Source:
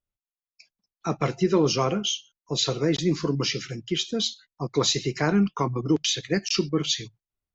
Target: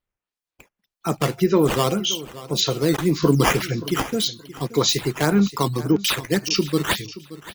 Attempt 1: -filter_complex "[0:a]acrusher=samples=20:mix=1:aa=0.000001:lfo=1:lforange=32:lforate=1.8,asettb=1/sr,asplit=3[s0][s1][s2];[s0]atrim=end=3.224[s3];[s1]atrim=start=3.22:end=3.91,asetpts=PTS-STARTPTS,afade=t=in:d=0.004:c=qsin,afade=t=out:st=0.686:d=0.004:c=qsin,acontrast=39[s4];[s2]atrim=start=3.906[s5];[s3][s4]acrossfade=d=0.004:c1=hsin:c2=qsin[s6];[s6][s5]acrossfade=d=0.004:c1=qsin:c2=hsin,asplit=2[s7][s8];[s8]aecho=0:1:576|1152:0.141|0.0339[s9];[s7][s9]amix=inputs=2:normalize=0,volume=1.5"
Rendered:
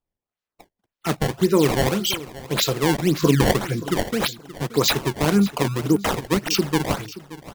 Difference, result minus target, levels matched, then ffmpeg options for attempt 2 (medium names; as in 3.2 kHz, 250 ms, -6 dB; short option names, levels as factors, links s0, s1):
decimation with a swept rate: distortion +6 dB
-filter_complex "[0:a]acrusher=samples=6:mix=1:aa=0.000001:lfo=1:lforange=9.6:lforate=1.8,asettb=1/sr,asplit=3[s0][s1][s2];[s0]atrim=end=3.224[s3];[s1]atrim=start=3.22:end=3.91,asetpts=PTS-STARTPTS,afade=t=in:d=0.004:c=qsin,afade=t=out:st=0.686:d=0.004:c=qsin,acontrast=39[s4];[s2]atrim=start=3.906[s5];[s3][s4]acrossfade=d=0.004:c1=hsin:c2=qsin[s6];[s6][s5]acrossfade=d=0.004:c1=qsin:c2=hsin,asplit=2[s7][s8];[s8]aecho=0:1:576|1152:0.141|0.0339[s9];[s7][s9]amix=inputs=2:normalize=0,volume=1.5"